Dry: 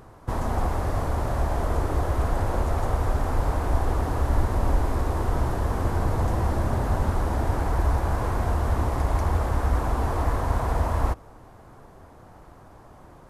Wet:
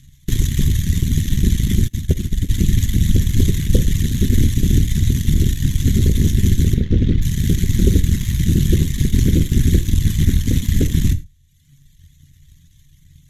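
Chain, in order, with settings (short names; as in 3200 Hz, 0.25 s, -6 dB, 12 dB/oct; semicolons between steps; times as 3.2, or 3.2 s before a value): CVSD 64 kbps; elliptic band-stop 150–2600 Hz, stop band 80 dB; notches 50/100/150 Hz; reverb removal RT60 1.3 s; ripple EQ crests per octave 1.1, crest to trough 11 dB; added harmonics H 8 -6 dB, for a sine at -12 dBFS; 6.74–7.22 air absorption 250 m; non-linear reverb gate 0.13 s falling, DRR 10 dB; 1.88–2.49 upward expander 2.5:1, over -31 dBFS; gain +6.5 dB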